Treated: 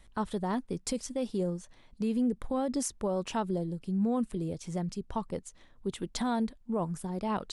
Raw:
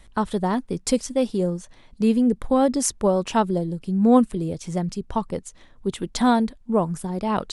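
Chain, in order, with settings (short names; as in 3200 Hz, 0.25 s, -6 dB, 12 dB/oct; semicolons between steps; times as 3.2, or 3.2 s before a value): limiter -15 dBFS, peak gain reduction 9.5 dB; gain -7.5 dB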